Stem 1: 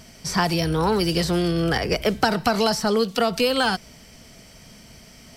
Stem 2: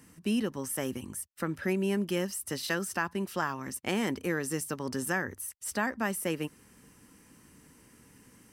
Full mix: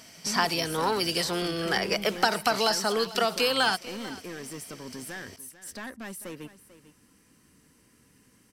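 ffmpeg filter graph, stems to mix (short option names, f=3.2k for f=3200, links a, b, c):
-filter_complex "[0:a]highpass=f=710:p=1,volume=-1dB,asplit=2[a][b];[b]volume=-18dB[c];[1:a]equalizer=f=4.2k:t=o:w=0.77:g=4.5,bandreject=f=880:w=12,asoftclip=type=tanh:threshold=-29.5dB,volume=-4dB,asplit=2[d][e];[e]volume=-15.5dB[f];[c][f]amix=inputs=2:normalize=0,aecho=0:1:444:1[g];[a][d][g]amix=inputs=3:normalize=0"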